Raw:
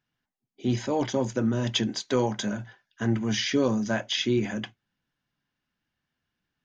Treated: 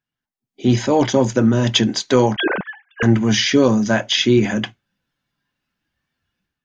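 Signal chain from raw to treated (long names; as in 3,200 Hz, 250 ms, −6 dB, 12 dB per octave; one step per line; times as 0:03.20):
0:02.36–0:03.03: three sine waves on the formant tracks
noise reduction from a noise print of the clip's start 7 dB
automatic gain control gain up to 10 dB
level +1.5 dB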